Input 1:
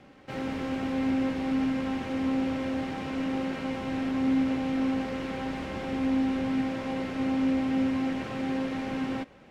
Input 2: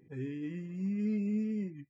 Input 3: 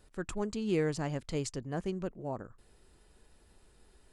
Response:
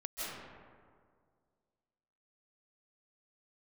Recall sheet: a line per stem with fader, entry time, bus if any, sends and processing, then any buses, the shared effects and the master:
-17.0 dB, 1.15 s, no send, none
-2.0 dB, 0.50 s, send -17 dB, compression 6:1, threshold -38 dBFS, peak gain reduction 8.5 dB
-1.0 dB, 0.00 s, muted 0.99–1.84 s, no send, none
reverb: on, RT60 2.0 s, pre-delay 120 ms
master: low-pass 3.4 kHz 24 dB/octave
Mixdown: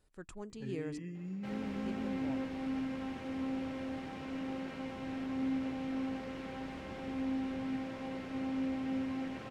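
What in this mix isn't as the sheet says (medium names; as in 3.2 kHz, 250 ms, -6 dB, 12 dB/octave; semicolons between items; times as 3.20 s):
stem 1 -17.0 dB -> -9.5 dB; stem 3 -1.0 dB -> -11.0 dB; master: missing low-pass 3.4 kHz 24 dB/octave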